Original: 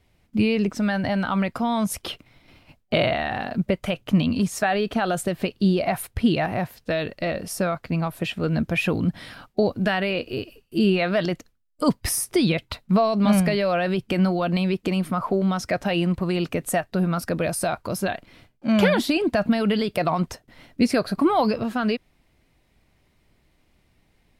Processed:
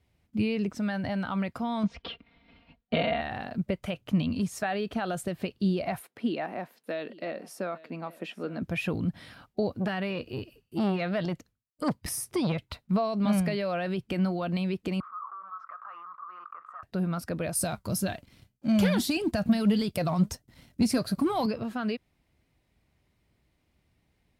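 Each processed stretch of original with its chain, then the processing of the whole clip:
1.83–3.21 inverse Chebyshev low-pass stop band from 11000 Hz, stop band 60 dB + comb 4.3 ms, depth 92%
5.99–8.62 HPF 230 Hz 24 dB/oct + high shelf 3200 Hz -7.5 dB + echo 0.846 s -20 dB
9.8–12.61 bell 130 Hz +4.5 dB 1.6 oct + core saturation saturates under 720 Hz
15–16.83 overloaded stage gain 19 dB + Butterworth band-pass 1200 Hz, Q 6.2 + fast leveller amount 70%
17.55–21.46 tone controls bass +9 dB, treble +11 dB + flange 1.7 Hz, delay 2.8 ms, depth 2.7 ms, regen +76% + sample leveller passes 1
whole clip: HPF 55 Hz; low shelf 130 Hz +6.5 dB; gain -8.5 dB

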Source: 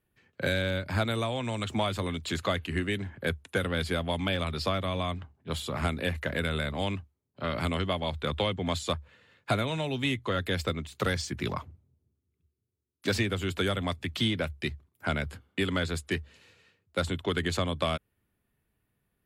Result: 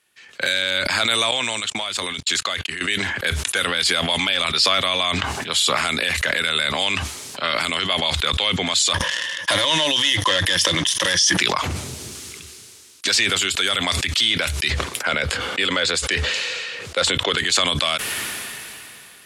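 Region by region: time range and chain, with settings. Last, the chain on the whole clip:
1.31–2.81 gate -38 dBFS, range -48 dB + level quantiser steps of 21 dB
8.94–11.39 ripple EQ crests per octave 1.2, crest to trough 15 dB + sample leveller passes 2
14.7–17.38 LPF 3600 Hz 6 dB/oct + bell 510 Hz +9.5 dB 0.35 oct
whole clip: weighting filter ITU-R 468; maximiser +19.5 dB; sustainer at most 20 dB/s; gain -7.5 dB

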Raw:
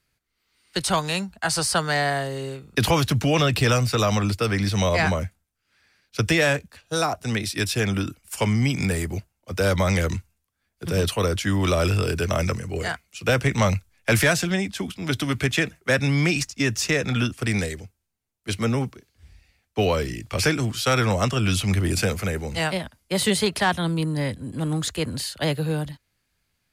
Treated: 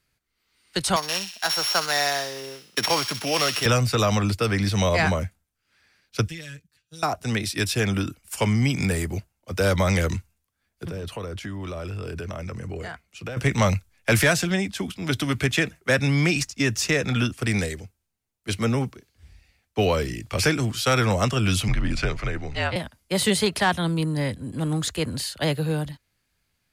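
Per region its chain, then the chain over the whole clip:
0.96–3.66 sample sorter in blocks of 8 samples + weighting filter A + thin delay 63 ms, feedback 56%, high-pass 2600 Hz, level -5 dB
6.28–7.03 passive tone stack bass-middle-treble 6-0-2 + comb 6.5 ms, depth 94% + tube stage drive 18 dB, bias 0.55
10.85–13.37 compressor 12:1, threshold -28 dBFS + high shelf 3200 Hz -9 dB
21.68–22.76 LPF 3900 Hz + bell 450 Hz -5.5 dB 0.55 oct + frequency shift -64 Hz
whole clip: dry

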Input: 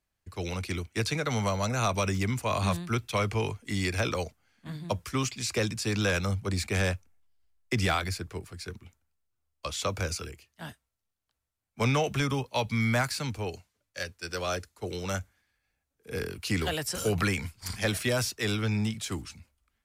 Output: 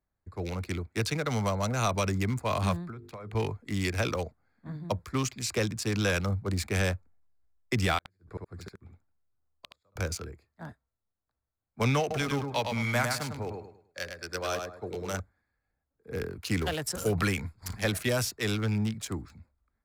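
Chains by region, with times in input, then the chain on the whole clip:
2.9–3.35 notches 50/100/150/200/250/300/350/400/450 Hz + compressor 10:1, threshold -37 dBFS
7.98–9.96 flipped gate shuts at -25 dBFS, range -40 dB + echo 72 ms -4 dB
12–15.2 low shelf 280 Hz -5.5 dB + feedback echo 0.104 s, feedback 31%, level -4.5 dB
whole clip: Wiener smoothing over 15 samples; high shelf 12000 Hz +8.5 dB

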